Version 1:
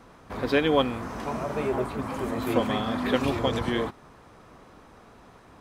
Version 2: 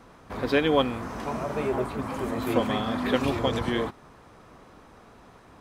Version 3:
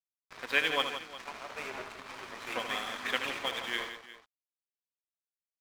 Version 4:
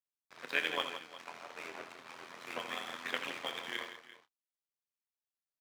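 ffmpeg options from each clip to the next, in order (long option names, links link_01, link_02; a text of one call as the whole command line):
ffmpeg -i in.wav -af anull out.wav
ffmpeg -i in.wav -af "bandpass=frequency=2300:width_type=q:width=1.4:csg=0,aeval=exprs='sgn(val(0))*max(abs(val(0))-0.00562,0)':channel_layout=same,aecho=1:1:75|165|358:0.355|0.282|0.15,volume=4dB" out.wav
ffmpeg -i in.wav -filter_complex "[0:a]tremolo=f=85:d=0.857,acrossover=split=100[link_01][link_02];[link_01]acrusher=bits=4:dc=4:mix=0:aa=0.000001[link_03];[link_02]asplit=2[link_04][link_05];[link_05]adelay=28,volume=-13dB[link_06];[link_04][link_06]amix=inputs=2:normalize=0[link_07];[link_03][link_07]amix=inputs=2:normalize=0,volume=-2dB" out.wav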